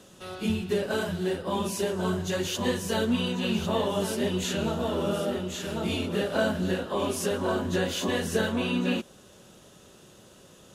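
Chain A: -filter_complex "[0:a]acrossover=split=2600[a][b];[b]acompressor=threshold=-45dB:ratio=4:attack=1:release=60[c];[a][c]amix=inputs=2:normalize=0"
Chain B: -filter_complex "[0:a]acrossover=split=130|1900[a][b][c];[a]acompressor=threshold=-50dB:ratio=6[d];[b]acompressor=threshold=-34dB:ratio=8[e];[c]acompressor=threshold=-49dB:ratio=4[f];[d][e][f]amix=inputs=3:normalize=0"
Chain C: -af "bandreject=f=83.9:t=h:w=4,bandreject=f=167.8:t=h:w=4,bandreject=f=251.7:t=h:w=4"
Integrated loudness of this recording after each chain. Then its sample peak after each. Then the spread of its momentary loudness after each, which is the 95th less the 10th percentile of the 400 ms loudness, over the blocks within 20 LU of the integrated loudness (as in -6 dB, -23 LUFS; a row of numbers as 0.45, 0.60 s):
-29.0, -37.0, -28.5 LUFS; -13.0, -22.5, -13.0 dBFS; 4, 16, 3 LU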